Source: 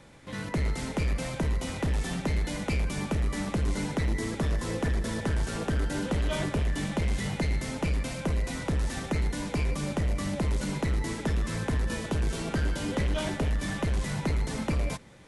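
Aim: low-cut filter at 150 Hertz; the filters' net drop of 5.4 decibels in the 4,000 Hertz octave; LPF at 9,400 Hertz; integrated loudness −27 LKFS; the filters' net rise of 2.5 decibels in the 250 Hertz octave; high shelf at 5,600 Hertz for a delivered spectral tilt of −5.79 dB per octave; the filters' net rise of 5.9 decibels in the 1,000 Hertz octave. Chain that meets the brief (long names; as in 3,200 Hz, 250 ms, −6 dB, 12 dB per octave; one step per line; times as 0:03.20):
high-pass filter 150 Hz
low-pass filter 9,400 Hz
parametric band 250 Hz +4 dB
parametric band 1,000 Hz +7.5 dB
parametric band 4,000 Hz −6.5 dB
high-shelf EQ 5,600 Hz −3 dB
level +4 dB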